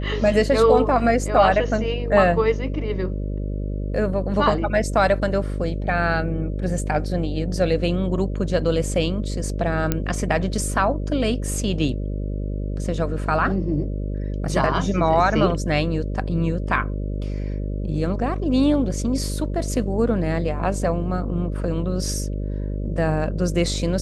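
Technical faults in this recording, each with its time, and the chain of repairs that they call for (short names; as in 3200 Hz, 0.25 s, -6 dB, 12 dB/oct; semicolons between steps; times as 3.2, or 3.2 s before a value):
buzz 50 Hz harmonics 12 -26 dBFS
9.92 pop -6 dBFS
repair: de-click; de-hum 50 Hz, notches 12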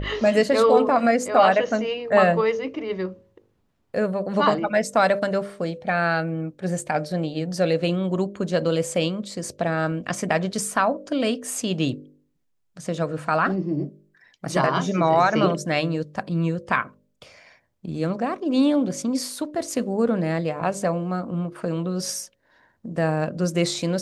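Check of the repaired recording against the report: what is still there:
none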